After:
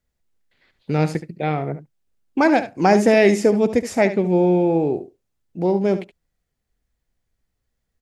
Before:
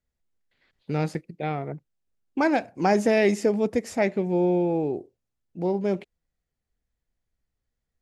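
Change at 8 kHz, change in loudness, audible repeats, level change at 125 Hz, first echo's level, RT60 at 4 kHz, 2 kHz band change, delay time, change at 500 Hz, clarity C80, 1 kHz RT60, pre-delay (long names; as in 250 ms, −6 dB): +6.0 dB, +6.0 dB, 1, +6.5 dB, −12.5 dB, no reverb audible, +6.0 dB, 72 ms, +6.0 dB, no reverb audible, no reverb audible, no reverb audible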